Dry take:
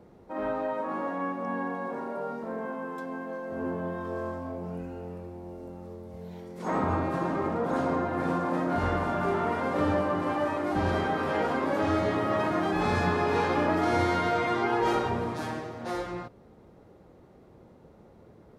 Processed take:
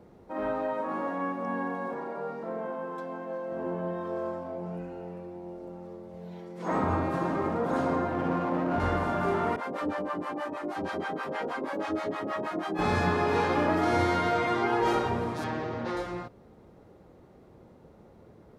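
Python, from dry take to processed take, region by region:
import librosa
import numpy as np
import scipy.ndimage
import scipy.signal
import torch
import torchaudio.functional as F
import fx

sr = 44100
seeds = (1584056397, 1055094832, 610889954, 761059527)

y = fx.chain(x, sr, fx.lowpass(hz=3900.0, slope=6),
    fx.low_shelf(hz=170.0, db=-6.5),
    fx.comb(ms=6.0, depth=0.54), at=(1.94, 6.71))
y = fx.chain(y, sr, fx.lowpass(hz=1700.0, slope=12),
    fx.running_max(window=5), at=(8.12, 8.8))
y = fx.chain(y, sr, fx.highpass(hz=200.0, slope=12),
    fx.harmonic_tremolo(hz=6.3, depth_pct=100, crossover_hz=650.0), at=(9.56, 12.79))
y = fx.chain(y, sr, fx.lowpass(hz=4200.0, slope=12),
    fx.notch(hz=710.0, q=23.0),
    fx.env_flatten(amount_pct=70), at=(15.44, 15.97))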